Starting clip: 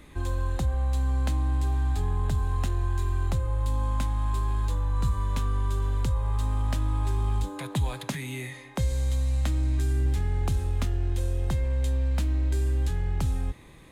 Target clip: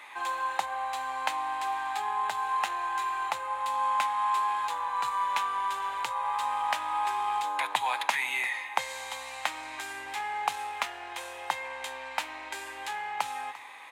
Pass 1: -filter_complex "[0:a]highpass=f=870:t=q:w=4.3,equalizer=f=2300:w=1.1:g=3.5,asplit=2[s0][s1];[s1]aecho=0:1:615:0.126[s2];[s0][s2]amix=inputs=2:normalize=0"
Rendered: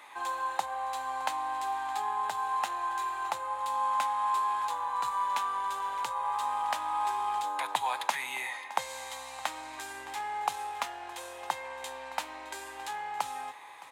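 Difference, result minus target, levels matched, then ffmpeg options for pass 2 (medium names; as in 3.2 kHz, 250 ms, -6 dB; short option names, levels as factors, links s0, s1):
echo 269 ms late; 2 kHz band -3.5 dB
-filter_complex "[0:a]highpass=f=870:t=q:w=4.3,equalizer=f=2300:w=1.1:g=10.5,asplit=2[s0][s1];[s1]aecho=0:1:346:0.126[s2];[s0][s2]amix=inputs=2:normalize=0"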